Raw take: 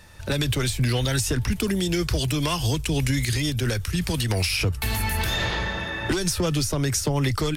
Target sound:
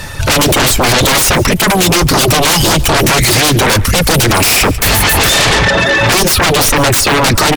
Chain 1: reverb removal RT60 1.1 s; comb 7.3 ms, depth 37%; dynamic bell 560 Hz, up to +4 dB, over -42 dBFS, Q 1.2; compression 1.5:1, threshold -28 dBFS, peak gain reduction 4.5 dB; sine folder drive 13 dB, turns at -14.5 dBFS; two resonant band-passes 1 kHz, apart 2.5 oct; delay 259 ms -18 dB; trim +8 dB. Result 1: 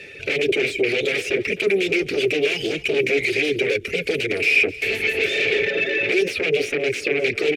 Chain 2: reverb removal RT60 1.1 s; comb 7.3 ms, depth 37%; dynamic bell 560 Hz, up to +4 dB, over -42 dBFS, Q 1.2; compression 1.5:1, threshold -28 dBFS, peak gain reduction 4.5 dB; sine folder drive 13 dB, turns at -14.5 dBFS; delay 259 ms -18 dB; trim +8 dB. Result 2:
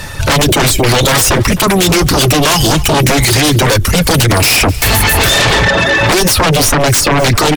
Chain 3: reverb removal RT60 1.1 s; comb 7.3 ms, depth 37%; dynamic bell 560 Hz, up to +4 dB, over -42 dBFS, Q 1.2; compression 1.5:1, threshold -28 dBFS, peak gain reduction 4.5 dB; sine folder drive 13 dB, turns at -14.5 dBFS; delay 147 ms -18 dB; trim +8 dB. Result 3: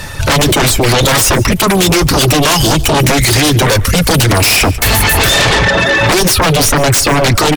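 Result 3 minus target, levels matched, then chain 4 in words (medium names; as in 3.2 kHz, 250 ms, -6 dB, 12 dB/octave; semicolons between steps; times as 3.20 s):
compression: peak gain reduction +4.5 dB
reverb removal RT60 1.1 s; comb 7.3 ms, depth 37%; dynamic bell 560 Hz, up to +4 dB, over -42 dBFS, Q 1.2; sine folder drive 13 dB, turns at -14.5 dBFS; delay 147 ms -18 dB; trim +8 dB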